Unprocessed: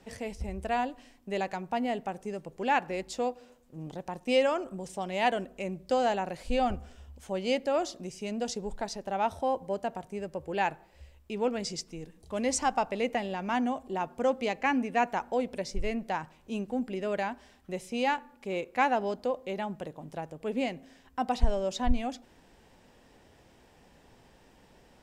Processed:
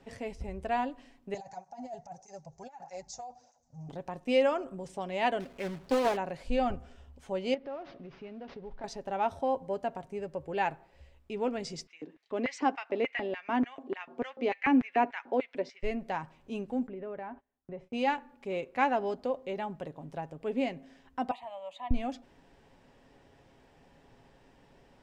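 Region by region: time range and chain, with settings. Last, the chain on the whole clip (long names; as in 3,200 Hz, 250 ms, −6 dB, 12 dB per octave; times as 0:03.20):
0:01.34–0:03.89: drawn EQ curve 110 Hz 0 dB, 290 Hz −19 dB, 440 Hz −19 dB, 770 Hz +4 dB, 1,100 Hz −13 dB, 2,000 Hz −13 dB, 3,000 Hz −19 dB, 6,300 Hz +12 dB, 11,000 Hz −28 dB + compressor whose output falls as the input rises −37 dBFS + through-zero flanger with one copy inverted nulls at 1.6 Hz, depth 4 ms
0:05.40–0:06.17: log-companded quantiser 4 bits + highs frequency-modulated by the lows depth 0.37 ms
0:07.54–0:08.84: variable-slope delta modulation 32 kbit/s + low-pass filter 2,500 Hz + downward compressor 2.5 to 1, threshold −42 dBFS
0:11.87–0:15.83: high-frequency loss of the air 140 metres + auto-filter high-pass square 3.4 Hz 300–2,000 Hz
0:16.87–0:17.93: low-pass filter 1,600 Hz + downward compressor 2.5 to 1, threshold −38 dBFS + noise gate −54 dBFS, range −25 dB
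0:21.31–0:21.91: high-pass filter 730 Hz + high-shelf EQ 3,900 Hz −8.5 dB + phaser with its sweep stopped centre 1,500 Hz, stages 6
whole clip: low-pass filter 3,400 Hz 6 dB per octave; comb filter 7.3 ms, depth 32%; level −1.5 dB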